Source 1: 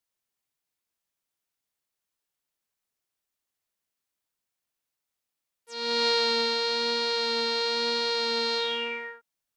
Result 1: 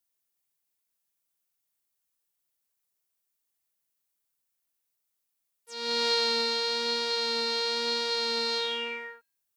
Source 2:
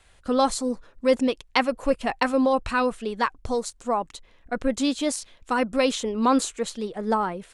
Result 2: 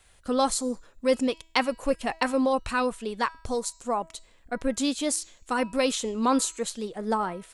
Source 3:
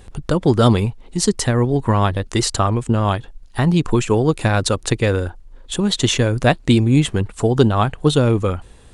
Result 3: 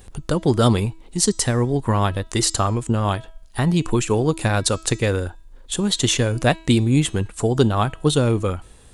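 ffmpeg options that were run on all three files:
-af "highshelf=frequency=7600:gain=11,bandreject=frequency=324.2:width_type=h:width=4,bandreject=frequency=648.4:width_type=h:width=4,bandreject=frequency=972.6:width_type=h:width=4,bandreject=frequency=1296.8:width_type=h:width=4,bandreject=frequency=1621:width_type=h:width=4,bandreject=frequency=1945.2:width_type=h:width=4,bandreject=frequency=2269.4:width_type=h:width=4,bandreject=frequency=2593.6:width_type=h:width=4,bandreject=frequency=2917.8:width_type=h:width=4,bandreject=frequency=3242:width_type=h:width=4,bandreject=frequency=3566.2:width_type=h:width=4,bandreject=frequency=3890.4:width_type=h:width=4,bandreject=frequency=4214.6:width_type=h:width=4,bandreject=frequency=4538.8:width_type=h:width=4,bandreject=frequency=4863:width_type=h:width=4,bandreject=frequency=5187.2:width_type=h:width=4,bandreject=frequency=5511.4:width_type=h:width=4,bandreject=frequency=5835.6:width_type=h:width=4,bandreject=frequency=6159.8:width_type=h:width=4,bandreject=frequency=6484:width_type=h:width=4,bandreject=frequency=6808.2:width_type=h:width=4,bandreject=frequency=7132.4:width_type=h:width=4,bandreject=frequency=7456.6:width_type=h:width=4,bandreject=frequency=7780.8:width_type=h:width=4,bandreject=frequency=8105:width_type=h:width=4,volume=-3dB"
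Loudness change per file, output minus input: −1.5, −2.5, −2.5 LU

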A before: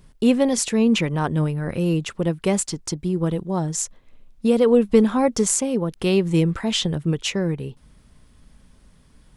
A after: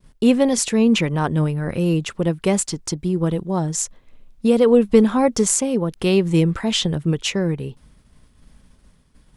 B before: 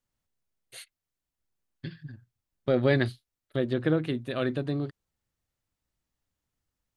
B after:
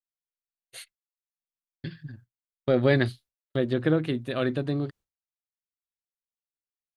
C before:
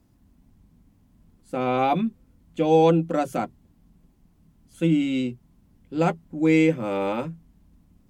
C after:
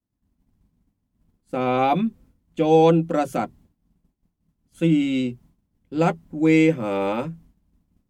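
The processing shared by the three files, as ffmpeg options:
-af "agate=range=-33dB:threshold=-47dB:ratio=3:detection=peak,volume=2dB"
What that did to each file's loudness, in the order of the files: +2.0, +2.0, +2.0 LU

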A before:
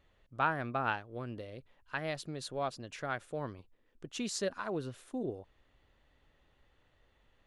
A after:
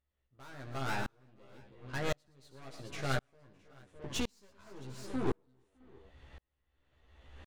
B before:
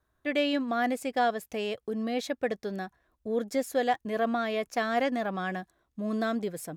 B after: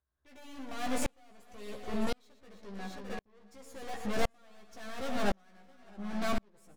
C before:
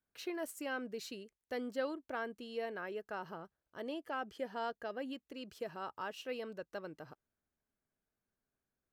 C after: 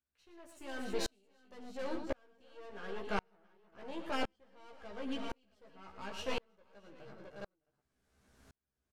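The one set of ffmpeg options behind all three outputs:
-filter_complex "[0:a]lowpass=9100,aeval=exprs='(tanh(112*val(0)+0.6)-tanh(0.6))/112':channel_layout=same,acompressor=mode=upward:threshold=-59dB:ratio=2.5,equalizer=frequency=70:width_type=o:width=0.42:gain=10.5,asplit=2[link_01][link_02];[link_02]adelay=15,volume=-3dB[link_03];[link_01][link_03]amix=inputs=2:normalize=0,asplit=2[link_04][link_05];[link_05]aecho=0:1:68|116|305|329|611|666:0.178|0.282|0.112|0.2|0.158|0.266[link_06];[link_04][link_06]amix=inputs=2:normalize=0,aeval=exprs='val(0)*pow(10,-40*if(lt(mod(-0.94*n/s,1),2*abs(-0.94)/1000),1-mod(-0.94*n/s,1)/(2*abs(-0.94)/1000),(mod(-0.94*n/s,1)-2*abs(-0.94)/1000)/(1-2*abs(-0.94)/1000))/20)':channel_layout=same,volume=11.5dB"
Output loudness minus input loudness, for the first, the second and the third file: −2.0, −7.5, 0.0 LU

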